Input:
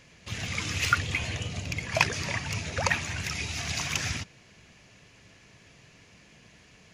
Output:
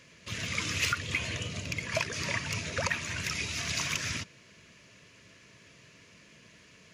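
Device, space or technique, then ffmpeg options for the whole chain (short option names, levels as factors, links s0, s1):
PA system with an anti-feedback notch: -af "highpass=f=130:p=1,asuperstop=centerf=790:order=4:qfactor=3.7,alimiter=limit=0.158:level=0:latency=1:release=211"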